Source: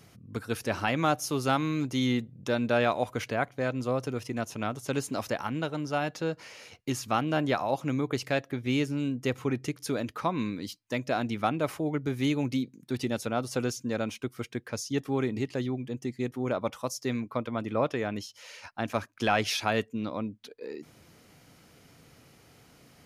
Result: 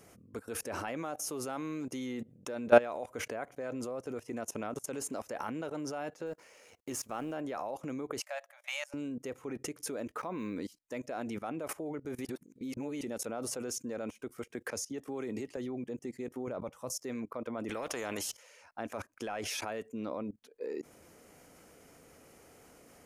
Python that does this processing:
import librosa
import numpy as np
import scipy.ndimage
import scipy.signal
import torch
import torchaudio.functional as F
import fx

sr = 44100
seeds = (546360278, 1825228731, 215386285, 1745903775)

y = fx.law_mismatch(x, sr, coded='A', at=(6.26, 7.34))
y = fx.brickwall_highpass(y, sr, low_hz=550.0, at=(8.2, 8.94))
y = fx.resample_linear(y, sr, factor=2, at=(10.07, 10.57))
y = fx.band_squash(y, sr, depth_pct=70, at=(14.5, 15.57))
y = fx.peak_eq(y, sr, hz=130.0, db=10.5, octaves=1.1, at=(16.47, 16.93))
y = fx.spectral_comp(y, sr, ratio=2.0, at=(17.69, 18.37))
y = fx.edit(y, sr, fx.reverse_span(start_s=12.25, length_s=0.76), tone=tone)
y = fx.graphic_eq_10(y, sr, hz=(125, 500, 4000, 8000), db=(-10, 5, -9, 5))
y = fx.level_steps(y, sr, step_db=21)
y = y * librosa.db_to_amplitude(4.5)